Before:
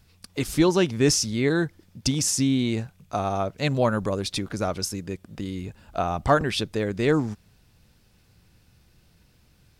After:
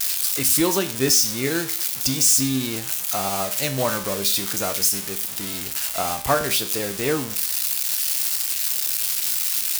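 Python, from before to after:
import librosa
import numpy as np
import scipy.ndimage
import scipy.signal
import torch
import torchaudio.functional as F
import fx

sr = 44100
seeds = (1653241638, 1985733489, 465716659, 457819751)

y = x + 0.5 * 10.0 ** (-14.0 / 20.0) * np.diff(np.sign(x), prepend=np.sign(x[:1]))
y = fx.low_shelf(y, sr, hz=280.0, db=-7.5)
y = fx.comb_fb(y, sr, f0_hz=66.0, decay_s=0.45, harmonics='all', damping=0.0, mix_pct=70)
y = fx.end_taper(y, sr, db_per_s=120.0)
y = F.gain(torch.from_numpy(y), 7.5).numpy()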